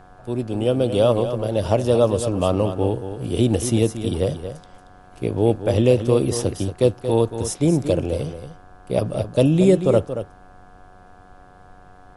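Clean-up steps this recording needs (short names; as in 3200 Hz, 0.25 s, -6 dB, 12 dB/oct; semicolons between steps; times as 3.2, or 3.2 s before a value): de-hum 94.2 Hz, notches 18; notch 730 Hz, Q 30; expander -39 dBFS, range -21 dB; inverse comb 0.229 s -10 dB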